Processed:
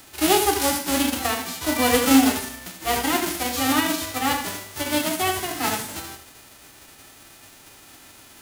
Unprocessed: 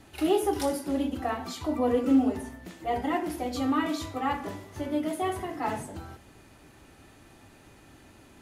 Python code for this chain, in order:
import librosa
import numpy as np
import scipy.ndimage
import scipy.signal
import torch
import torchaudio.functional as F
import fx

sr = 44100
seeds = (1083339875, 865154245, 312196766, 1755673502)

p1 = fx.envelope_flatten(x, sr, power=0.3)
p2 = p1 + fx.echo_single(p1, sr, ms=78, db=-9.5, dry=0)
y = p2 * 10.0 ** (5.5 / 20.0)